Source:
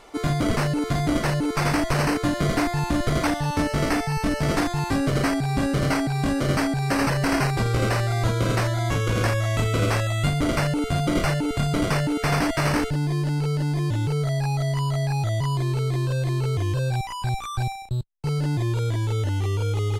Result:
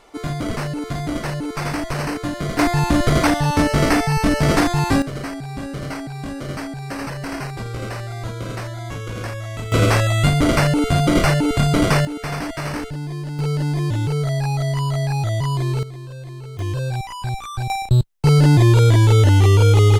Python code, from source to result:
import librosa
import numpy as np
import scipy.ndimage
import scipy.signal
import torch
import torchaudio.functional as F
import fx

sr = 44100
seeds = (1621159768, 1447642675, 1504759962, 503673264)

y = fx.gain(x, sr, db=fx.steps((0.0, -2.0), (2.59, 6.5), (5.02, -6.0), (9.72, 6.5), (12.05, -4.0), (13.39, 3.0), (15.83, -10.0), (16.59, 0.5), (17.7, 12.0)))